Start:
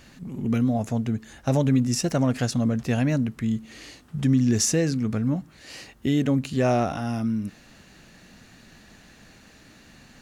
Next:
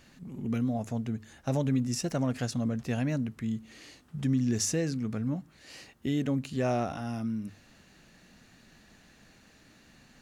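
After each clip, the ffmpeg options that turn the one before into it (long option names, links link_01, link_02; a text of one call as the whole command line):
ffmpeg -i in.wav -af "bandreject=frequency=50:width_type=h:width=6,bandreject=frequency=100:width_type=h:width=6,volume=-7dB" out.wav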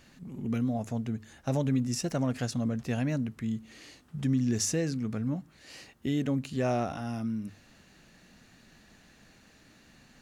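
ffmpeg -i in.wav -af anull out.wav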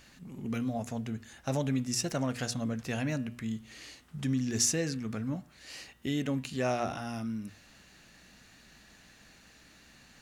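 ffmpeg -i in.wav -af "tiltshelf=frequency=770:gain=-3.5,bandreject=frequency=120.6:width_type=h:width=4,bandreject=frequency=241.2:width_type=h:width=4,bandreject=frequency=361.8:width_type=h:width=4,bandreject=frequency=482.4:width_type=h:width=4,bandreject=frequency=603:width_type=h:width=4,bandreject=frequency=723.6:width_type=h:width=4,bandreject=frequency=844.2:width_type=h:width=4,bandreject=frequency=964.8:width_type=h:width=4,bandreject=frequency=1085.4:width_type=h:width=4,bandreject=frequency=1206:width_type=h:width=4,bandreject=frequency=1326.6:width_type=h:width=4,bandreject=frequency=1447.2:width_type=h:width=4,bandreject=frequency=1567.8:width_type=h:width=4,bandreject=frequency=1688.4:width_type=h:width=4,bandreject=frequency=1809:width_type=h:width=4,bandreject=frequency=1929.6:width_type=h:width=4,bandreject=frequency=2050.2:width_type=h:width=4,bandreject=frequency=2170.8:width_type=h:width=4,bandreject=frequency=2291.4:width_type=h:width=4,bandreject=frequency=2412:width_type=h:width=4,bandreject=frequency=2532.6:width_type=h:width=4,bandreject=frequency=2653.2:width_type=h:width=4,bandreject=frequency=2773.8:width_type=h:width=4,bandreject=frequency=2894.4:width_type=h:width=4,bandreject=frequency=3015:width_type=h:width=4,bandreject=frequency=3135.6:width_type=h:width=4,bandreject=frequency=3256.2:width_type=h:width=4,bandreject=frequency=3376.8:width_type=h:width=4,bandreject=frequency=3497.4:width_type=h:width=4,bandreject=frequency=3618:width_type=h:width=4,bandreject=frequency=3738.6:width_type=h:width=4,aeval=exprs='val(0)+0.000447*(sin(2*PI*60*n/s)+sin(2*PI*2*60*n/s)/2+sin(2*PI*3*60*n/s)/3+sin(2*PI*4*60*n/s)/4+sin(2*PI*5*60*n/s)/5)':channel_layout=same" out.wav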